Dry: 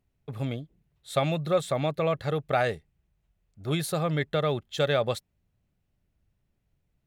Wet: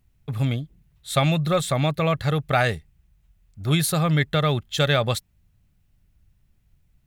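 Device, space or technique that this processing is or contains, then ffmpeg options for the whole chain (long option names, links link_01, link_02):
smiley-face EQ: -af "lowshelf=frequency=89:gain=7,equalizer=frequency=480:width_type=o:width=1.6:gain=-7.5,highshelf=frequency=9000:gain=4.5,volume=8dB"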